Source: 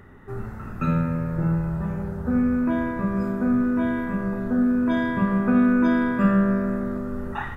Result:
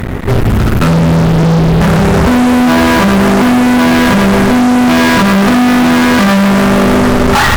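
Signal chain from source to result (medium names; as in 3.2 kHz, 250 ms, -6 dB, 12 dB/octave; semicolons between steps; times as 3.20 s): peaking EQ 970 Hz -11.5 dB 2.9 oct, from 1.81 s +3.5 dB; compression 6:1, threshold -28 dBFS, peak gain reduction 14 dB; fuzz box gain 46 dB, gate -51 dBFS; trim +6.5 dB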